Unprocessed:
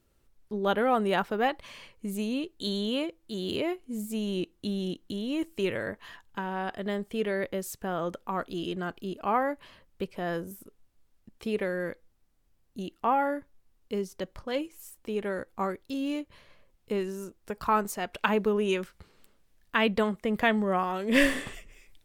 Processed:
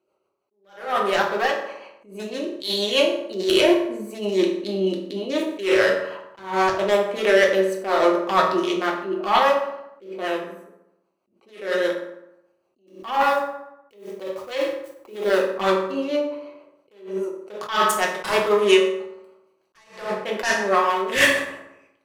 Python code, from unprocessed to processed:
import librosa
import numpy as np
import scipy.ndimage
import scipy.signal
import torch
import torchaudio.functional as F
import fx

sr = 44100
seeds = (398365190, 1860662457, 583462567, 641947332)

y = fx.wiener(x, sr, points=25)
y = scipy.signal.sosfilt(scipy.signal.butter(2, 810.0, 'highpass', fs=sr, output='sos'), y)
y = fx.rider(y, sr, range_db=5, speed_s=2.0)
y = fx.fold_sine(y, sr, drive_db=13, ceiling_db=-9.0)
y = fx.rotary(y, sr, hz=6.3)
y = fx.quant_dither(y, sr, seeds[0], bits=8, dither='none', at=(12.87, 15.4))
y = fx.rev_fdn(y, sr, rt60_s=0.85, lf_ratio=1.1, hf_ratio=0.6, size_ms=16.0, drr_db=-1.5)
y = fx.attack_slew(y, sr, db_per_s=130.0)